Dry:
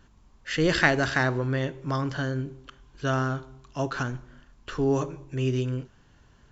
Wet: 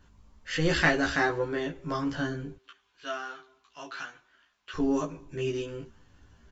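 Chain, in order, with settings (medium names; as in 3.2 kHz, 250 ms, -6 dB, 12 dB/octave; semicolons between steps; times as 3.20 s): 2.55–4.74 s: band-pass filter 2.7 kHz, Q 0.81; doubling 18 ms -4 dB; chorus voices 6, 0.59 Hz, delay 12 ms, depth 2.1 ms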